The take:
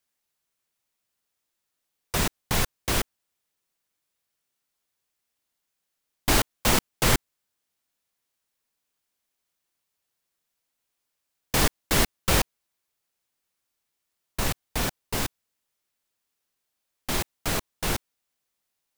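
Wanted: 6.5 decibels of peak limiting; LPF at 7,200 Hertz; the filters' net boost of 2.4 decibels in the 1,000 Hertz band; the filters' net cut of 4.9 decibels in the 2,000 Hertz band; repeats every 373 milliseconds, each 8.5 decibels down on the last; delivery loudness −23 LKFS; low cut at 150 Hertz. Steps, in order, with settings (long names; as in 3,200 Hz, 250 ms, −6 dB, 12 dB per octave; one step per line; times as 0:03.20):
high-pass filter 150 Hz
low-pass filter 7,200 Hz
parametric band 1,000 Hz +5 dB
parametric band 2,000 Hz −8 dB
brickwall limiter −17 dBFS
repeating echo 373 ms, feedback 38%, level −8.5 dB
level +9 dB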